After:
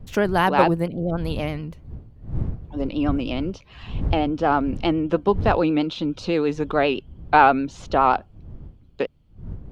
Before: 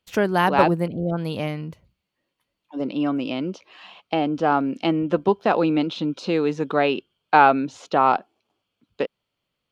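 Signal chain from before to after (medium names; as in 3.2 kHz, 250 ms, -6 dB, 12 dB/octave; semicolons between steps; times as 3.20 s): wind noise 100 Hz -32 dBFS; vibrato 9.5 Hz 61 cents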